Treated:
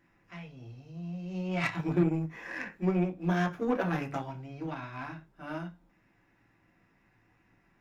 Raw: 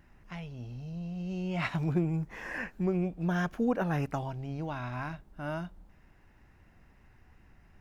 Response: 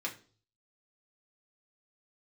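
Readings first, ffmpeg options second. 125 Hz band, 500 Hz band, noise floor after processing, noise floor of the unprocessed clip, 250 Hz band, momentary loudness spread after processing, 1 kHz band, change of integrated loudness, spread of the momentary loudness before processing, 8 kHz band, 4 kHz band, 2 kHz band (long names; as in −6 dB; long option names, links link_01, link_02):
−1.0 dB, +1.0 dB, −69 dBFS, −61 dBFS, +1.0 dB, 17 LU, +1.0 dB, +1.0 dB, 12 LU, can't be measured, +1.0 dB, +1.0 dB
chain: -filter_complex "[1:a]atrim=start_sample=2205,afade=type=out:start_time=0.17:duration=0.01,atrim=end_sample=7938[link_01];[0:a][link_01]afir=irnorm=-1:irlink=0,aeval=exprs='0.168*(cos(1*acos(clip(val(0)/0.168,-1,1)))-cos(1*PI/2))+0.0106*(cos(7*acos(clip(val(0)/0.168,-1,1)))-cos(7*PI/2))':channel_layout=same"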